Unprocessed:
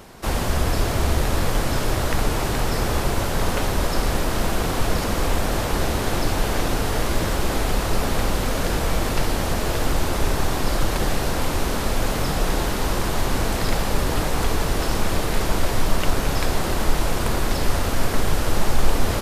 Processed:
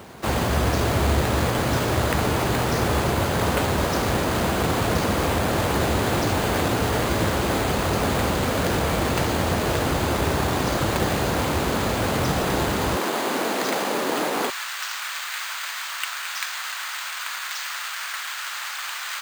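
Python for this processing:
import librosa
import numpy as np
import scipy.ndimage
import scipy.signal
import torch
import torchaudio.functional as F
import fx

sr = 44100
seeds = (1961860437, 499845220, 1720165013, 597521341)

y = fx.highpass(x, sr, hz=fx.steps((0.0, 67.0), (12.97, 240.0), (14.5, 1300.0)), slope=24)
y = np.repeat(scipy.signal.resample_poly(y, 1, 4), 4)[:len(y)]
y = y * 10.0 ** (2.5 / 20.0)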